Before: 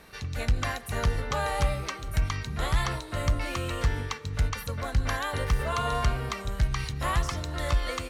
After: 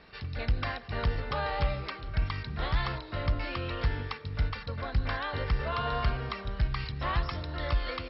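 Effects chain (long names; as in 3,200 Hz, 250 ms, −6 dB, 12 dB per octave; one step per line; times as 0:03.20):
level −3 dB
MP2 32 kbit/s 22,050 Hz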